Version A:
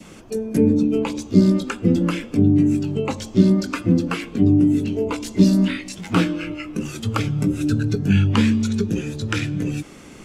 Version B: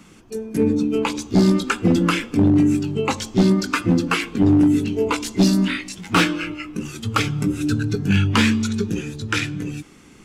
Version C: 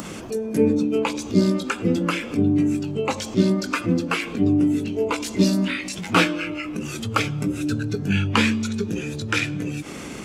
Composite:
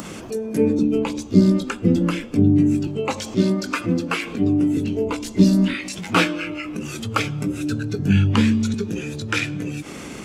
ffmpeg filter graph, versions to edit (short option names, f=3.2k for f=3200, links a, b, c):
-filter_complex "[0:a]asplit=3[a][b][c];[2:a]asplit=4[d][e][f][g];[d]atrim=end=0.792[h];[a]atrim=start=0.788:end=2.872[i];[e]atrim=start=2.868:end=4.772[j];[b]atrim=start=4.768:end=5.742[k];[f]atrim=start=5.738:end=7.992[l];[c]atrim=start=7.988:end=8.742[m];[g]atrim=start=8.738[n];[h][i]acrossfade=d=0.004:c1=hsin:c2=hsin[o];[o][j]acrossfade=d=0.004:c1=hsin:c2=hsin[p];[p][k]acrossfade=d=0.004:c1=hsin:c2=hsin[q];[q][l]acrossfade=d=0.004:c1=hsin:c2=hsin[r];[r][m]acrossfade=d=0.004:c1=hsin:c2=hsin[s];[s][n]acrossfade=d=0.004:c1=hsin:c2=hsin"